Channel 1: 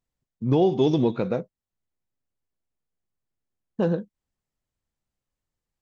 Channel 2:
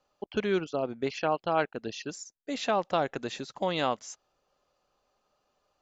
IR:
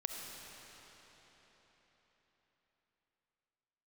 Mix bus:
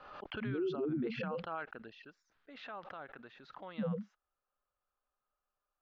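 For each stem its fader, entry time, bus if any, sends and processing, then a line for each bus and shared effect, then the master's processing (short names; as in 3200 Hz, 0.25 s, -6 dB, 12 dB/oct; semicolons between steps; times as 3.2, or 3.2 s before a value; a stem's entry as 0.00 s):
-6.0 dB, 0.00 s, no send, loudest bins only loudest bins 2
1.77 s -15.5 dB -> 2.11 s -22 dB, 0.00 s, no send, bell 1400 Hz +11.5 dB 0.94 oct; limiter -14 dBFS, peak gain reduction 7 dB; backwards sustainer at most 46 dB/s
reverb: off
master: LPF 3700 Hz 24 dB/oct; limiter -29.5 dBFS, peak gain reduction 9 dB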